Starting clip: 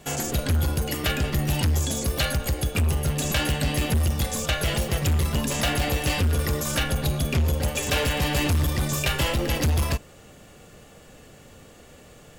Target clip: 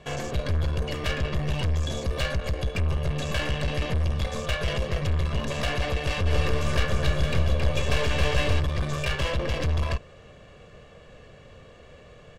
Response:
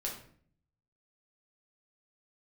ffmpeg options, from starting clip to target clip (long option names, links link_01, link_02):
-filter_complex "[0:a]lowpass=3700,aeval=exprs='(tanh(20*val(0)+0.55)-tanh(0.55))/20':channel_layout=same,aecho=1:1:1.8:0.46,asplit=3[link_01][link_02][link_03];[link_01]afade=type=out:start_time=6.25:duration=0.02[link_04];[link_02]aecho=1:1:270|459|591.3|683.9|748.7:0.631|0.398|0.251|0.158|0.1,afade=type=in:start_time=6.25:duration=0.02,afade=type=out:start_time=8.59:duration=0.02[link_05];[link_03]afade=type=in:start_time=8.59:duration=0.02[link_06];[link_04][link_05][link_06]amix=inputs=3:normalize=0,volume=1.5dB"